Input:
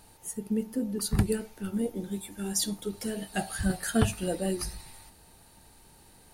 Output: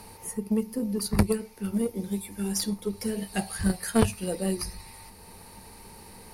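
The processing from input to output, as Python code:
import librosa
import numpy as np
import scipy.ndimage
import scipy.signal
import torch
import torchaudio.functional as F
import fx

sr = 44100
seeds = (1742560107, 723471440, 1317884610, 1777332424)

y = fx.ripple_eq(x, sr, per_octave=0.87, db=7)
y = fx.cheby_harmonics(y, sr, harmonics=(3,), levels_db=(-13,), full_scale_db=-9.5)
y = fx.band_squash(y, sr, depth_pct=40)
y = y * librosa.db_to_amplitude(8.5)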